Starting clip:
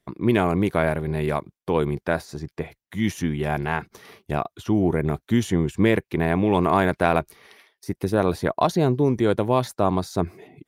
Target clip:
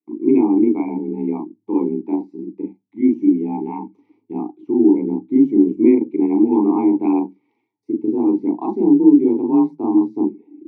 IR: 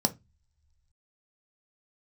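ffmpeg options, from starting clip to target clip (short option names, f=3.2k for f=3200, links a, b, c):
-filter_complex "[0:a]asplit=2[a][b];[1:a]atrim=start_sample=2205,adelay=36[c];[b][c]afir=irnorm=-1:irlink=0,volume=-11.5dB[d];[a][d]amix=inputs=2:normalize=0,afreqshift=35,asplit=3[e][f][g];[e]bandpass=f=300:t=q:w=8,volume=0dB[h];[f]bandpass=f=870:t=q:w=8,volume=-6dB[i];[g]bandpass=f=2.24k:t=q:w=8,volume=-9dB[j];[h][i][j]amix=inputs=3:normalize=0,afftdn=nr=12:nf=-40,equalizer=f=380:w=1.2:g=13.5,volume=1dB"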